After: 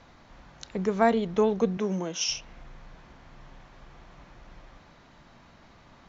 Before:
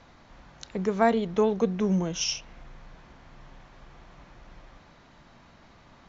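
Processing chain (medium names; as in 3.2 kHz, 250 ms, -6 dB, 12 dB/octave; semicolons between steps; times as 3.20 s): 1.77–2.29 s: high-pass 250 Hz 12 dB/octave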